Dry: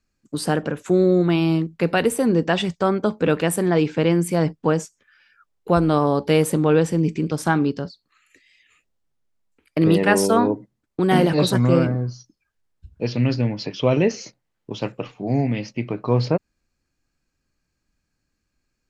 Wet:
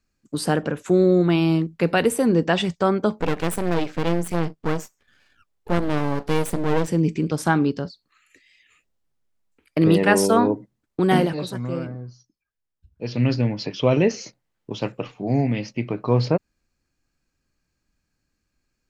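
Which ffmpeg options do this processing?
-filter_complex "[0:a]asettb=1/sr,asplit=3[a][b][c];[a]atrim=end=3.204[d];[b]atrim=start=3.2:end=6.88,asetpts=PTS-STARTPTS,afade=t=in:d=0.004:c=qsin,afade=t=out:st=3.676:d=0.004:c=qsin,aeval=exprs='max(val(0),0)':c=same[e];[c]atrim=start=6.876[f];[d][e]acrossfade=d=0.004:c1=hsin:c2=qsin[g];[g][f]acrossfade=d=0.004:c1=qsin:c2=hsin,asplit=3[h][i][j];[h]atrim=end=11.4,asetpts=PTS-STARTPTS,afade=t=out:st=11.11:d=0.29:silence=0.281838[k];[i]atrim=start=11.4:end=12.95,asetpts=PTS-STARTPTS,volume=-11dB[l];[j]atrim=start=12.95,asetpts=PTS-STARTPTS,afade=t=in:d=0.29:silence=0.281838[m];[k][l][m]concat=n=3:v=0:a=1"

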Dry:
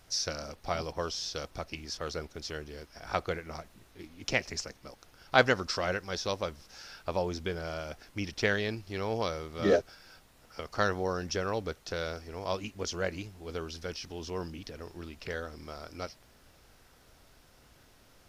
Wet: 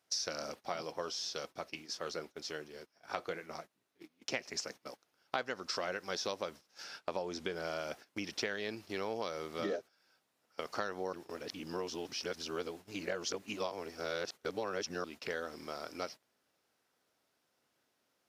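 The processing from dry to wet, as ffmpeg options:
-filter_complex "[0:a]asettb=1/sr,asplit=3[a][b][c];[a]atrim=end=0.654[d];[b]atrim=start=0.65:end=4.34,asetpts=PTS-STARTPTS,afade=t=in:d=0.004:c=qsin,afade=t=out:st=3.686:d=0.004:c=qsin,flanger=delay=4.9:depth=2.8:regen=-62:speed=1.4:shape=triangular[e];[c]atrim=start=4.336[f];[d][e]acrossfade=d=0.004:c1=hsin:c2=qsin[g];[g][f]acrossfade=d=0.004:c1=qsin:c2=hsin,asettb=1/sr,asplit=3[h][i][j];[h]atrim=end=6.844[k];[i]atrim=start=6.84:end=7.55,asetpts=PTS-STARTPTS,afade=t=in:d=0.004:c=qsin,afade=t=out:st=0.706:d=0.004:c=qsin,lowpass=11k[l];[j]atrim=start=7.546[m];[k][l]acrossfade=d=0.004:c1=hsin:c2=qsin[n];[n][m]acrossfade=d=0.004:c1=qsin:c2=hsin,asplit=3[o][p][q];[o]atrim=end=11.132[r];[p]atrim=start=11.128:end=15.042,asetpts=PTS-STARTPTS,areverse[s];[q]atrim=start=15.038[t];[r][s]acrossfade=d=0.004:c1=hsin:c2=hsin[u];[u][t]acrossfade=d=0.004:c1=hsin:c2=hsin,acompressor=threshold=-34dB:ratio=12,agate=range=-18dB:threshold=-48dB:ratio=16:detection=peak,highpass=230,volume=1.5dB"

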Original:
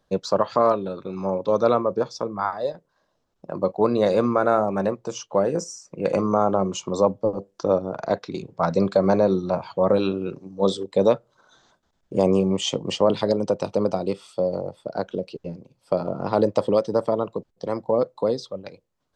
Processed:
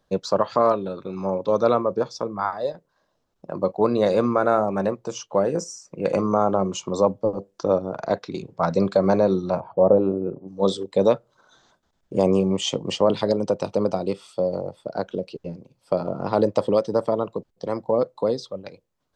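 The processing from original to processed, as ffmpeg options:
-filter_complex "[0:a]asettb=1/sr,asplit=3[a][b][c];[a]atrim=end=9.604[d];[b]atrim=start=9.6:end=10.48,asetpts=PTS-STARTPTS,afade=t=in:d=0.004:c=qsin,afade=t=out:st=0.876:d=0.004:c=qsin,lowpass=f=690:t=q:w=1.5[e];[c]atrim=start=10.476[f];[d][e]acrossfade=d=0.004:c1=hsin:c2=qsin[g];[g][f]acrossfade=d=0.004:c1=qsin:c2=hsin"

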